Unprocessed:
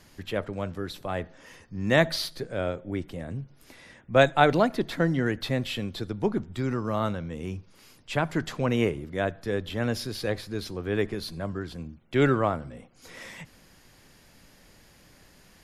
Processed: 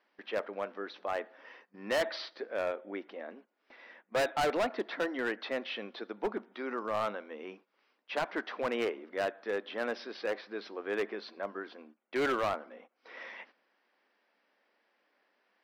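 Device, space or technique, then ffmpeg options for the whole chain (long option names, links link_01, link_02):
walkie-talkie: -af "afftfilt=real='re*between(b*sr/4096,190,6100)':imag='im*between(b*sr/4096,190,6100)':win_size=4096:overlap=0.75,highpass=490,lowpass=2400,asoftclip=type=hard:threshold=-26dB,agate=range=-12dB:threshold=-55dB:ratio=16:detection=peak"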